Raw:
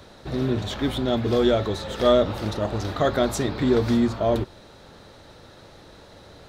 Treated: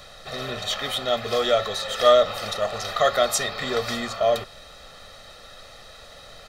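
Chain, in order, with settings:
high-pass filter 1,400 Hz 6 dB per octave
comb filter 1.6 ms, depth 84%
background noise brown −56 dBFS
level +5.5 dB

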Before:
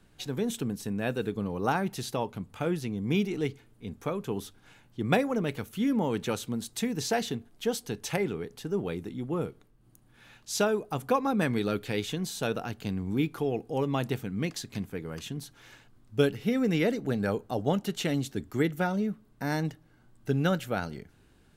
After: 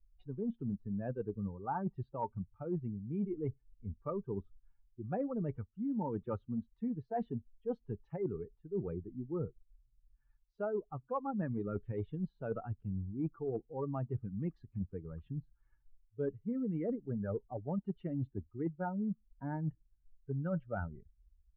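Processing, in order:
spectral dynamics exaggerated over time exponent 2
low-pass filter 1,200 Hz 24 dB per octave
reversed playback
downward compressor 12 to 1, threshold −43 dBFS, peak gain reduction 23 dB
reversed playback
level +9.5 dB

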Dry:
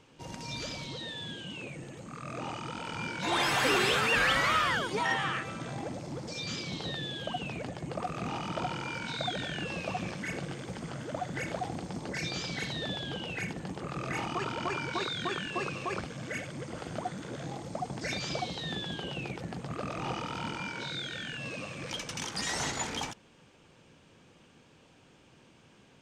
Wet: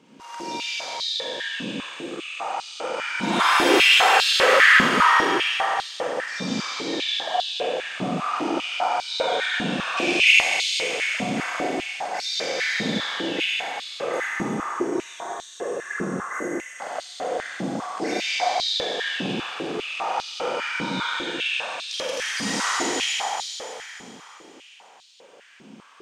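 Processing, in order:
0:09.97–0:10.80: high shelf with overshoot 1,900 Hz +10.5 dB, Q 3
0:14.02–0:16.79: gain on a spectral selection 2,100–5,500 Hz −17 dB
0:14.26–0:15.91: parametric band 1,300 Hz −14 dB 1.3 octaves
four-comb reverb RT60 3.4 s, combs from 33 ms, DRR −7 dB
high-pass on a step sequencer 5 Hz 220–4,000 Hz

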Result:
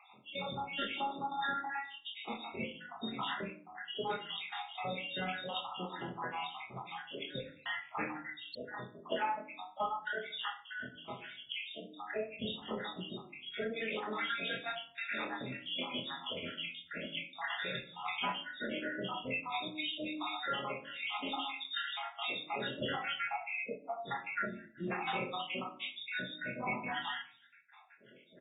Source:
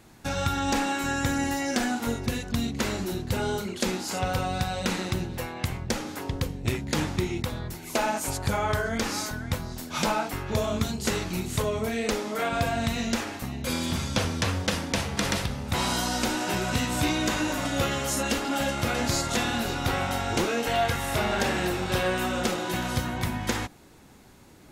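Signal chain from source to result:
time-frequency cells dropped at random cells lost 80%
meter weighting curve A
gain on a spectral selection 0:21.29–0:21.66, 380–3,800 Hz −26 dB
high-pass filter 100 Hz 12 dB per octave
high-shelf EQ 5,700 Hz +10.5 dB
downward compressor 4 to 1, threshold −37 dBFS, peak gain reduction 11 dB
tempo change 0.87×
double-tracking delay 23 ms −4 dB
rectangular room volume 420 cubic metres, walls furnished, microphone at 1.3 metres
AAC 16 kbit/s 32,000 Hz

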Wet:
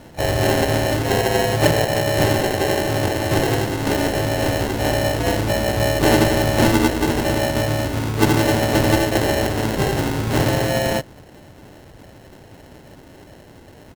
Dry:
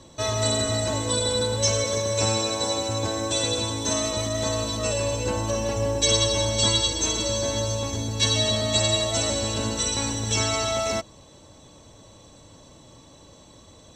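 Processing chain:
decimation without filtering 37×
pitch-shifted copies added +5 semitones −8 dB
backwards echo 39 ms −23 dB
level +5.5 dB

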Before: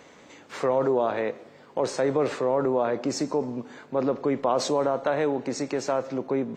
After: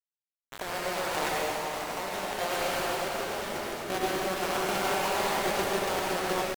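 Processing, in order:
stylus tracing distortion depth 0.14 ms
Butterworth low-pass 1,200 Hz 72 dB per octave
low-pass that shuts in the quiet parts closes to 900 Hz, open at −22.5 dBFS
high-pass filter 190 Hz 6 dB per octave
in parallel at −1 dB: brickwall limiter −21.5 dBFS, peak gain reduction 9 dB
on the sum: downward compressor 10 to 1, threshold −31 dBFS, peak gain reduction 15 dB
feedback delay with all-pass diffusion 454 ms, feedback 42%, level −6 dB
bit reduction 5 bits
sample-and-hold tremolo
pitch shifter +5.5 semitones
convolution reverb RT60 3.6 s, pre-delay 68 ms, DRR −6.5 dB
automatic gain control gain up to 3.5 dB
level −4 dB

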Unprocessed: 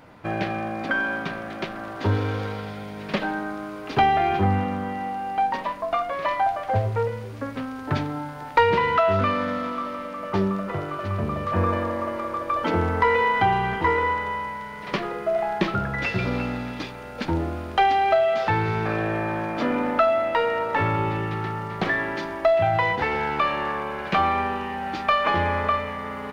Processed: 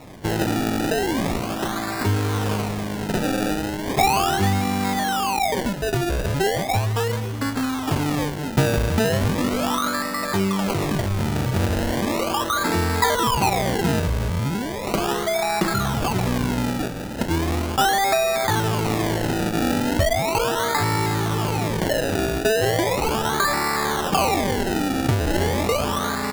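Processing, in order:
parametric band 540 Hz −14 dB 0.22 octaves
in parallel at 0 dB: compressor whose output falls as the input rises −31 dBFS, ratio −1
on the sum: sample-and-hold swept by an LFO 28×, swing 100% 0.37 Hz

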